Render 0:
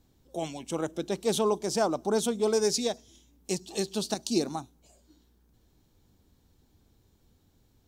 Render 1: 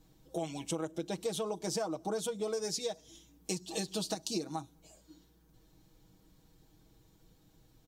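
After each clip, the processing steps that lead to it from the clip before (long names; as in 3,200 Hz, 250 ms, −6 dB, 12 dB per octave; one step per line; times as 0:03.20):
comb filter 6.3 ms, depth 80%
downward compressor 10 to 1, threshold −32 dBFS, peak gain reduction 15 dB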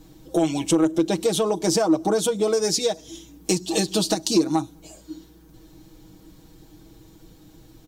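parametric band 320 Hz +9 dB 0.24 octaves
in parallel at −7 dB: sine wavefolder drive 4 dB, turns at −18.5 dBFS
on the sum: level +7 dB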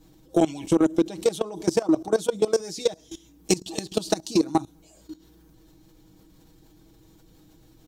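output level in coarse steps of 19 dB
level +2.5 dB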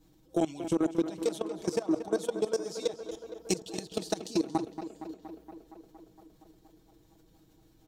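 tape delay 233 ms, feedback 78%, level −9.5 dB, low-pass 3,300 Hz
level −8 dB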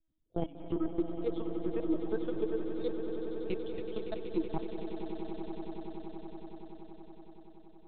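spectral dynamics exaggerated over time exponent 1.5
linear-prediction vocoder at 8 kHz pitch kept
echo that builds up and dies away 94 ms, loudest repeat 8, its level −12 dB
level −3 dB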